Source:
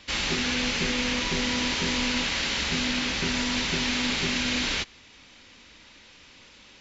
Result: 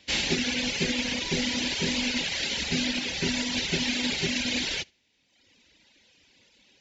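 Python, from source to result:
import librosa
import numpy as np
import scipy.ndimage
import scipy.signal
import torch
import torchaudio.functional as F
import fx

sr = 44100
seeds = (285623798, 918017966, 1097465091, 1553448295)

p1 = fx.highpass(x, sr, hz=96.0, slope=6)
p2 = fx.peak_eq(p1, sr, hz=1200.0, db=-12.5, octaves=0.64)
p3 = p2 + fx.room_flutter(p2, sr, wall_m=11.6, rt60_s=0.3, dry=0)
p4 = fx.dereverb_blind(p3, sr, rt60_s=1.3)
p5 = fx.upward_expand(p4, sr, threshold_db=-47.0, expansion=1.5)
y = p5 * librosa.db_to_amplitude(4.5)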